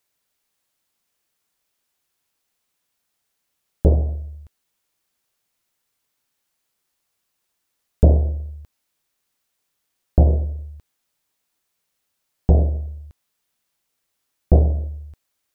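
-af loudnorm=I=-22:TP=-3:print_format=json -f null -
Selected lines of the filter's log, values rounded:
"input_i" : "-20.5",
"input_tp" : "-1.6",
"input_lra" : "4.7",
"input_thresh" : "-32.6",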